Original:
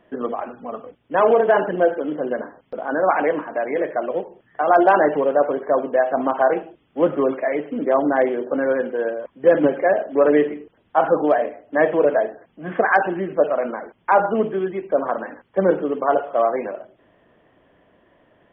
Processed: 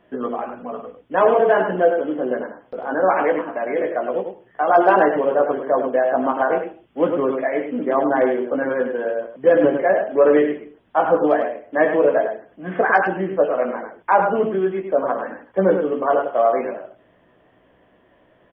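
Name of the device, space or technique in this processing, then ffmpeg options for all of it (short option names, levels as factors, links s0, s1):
slapback doubling: -filter_complex "[0:a]asplit=3[s0][s1][s2];[s1]adelay=16,volume=0.531[s3];[s2]adelay=103,volume=0.473[s4];[s0][s3][s4]amix=inputs=3:normalize=0,volume=0.891"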